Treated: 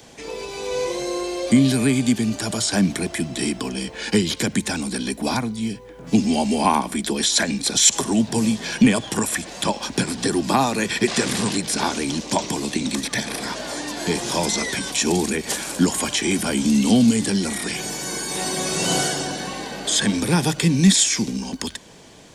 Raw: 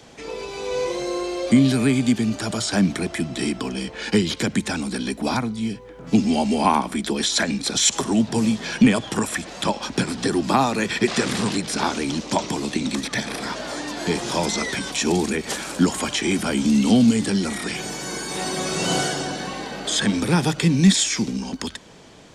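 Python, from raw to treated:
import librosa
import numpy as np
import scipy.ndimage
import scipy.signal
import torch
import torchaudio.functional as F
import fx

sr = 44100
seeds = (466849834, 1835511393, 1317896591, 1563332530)

y = fx.high_shelf(x, sr, hz=8500.0, db=11.0)
y = fx.notch(y, sr, hz=1300.0, q=11.0)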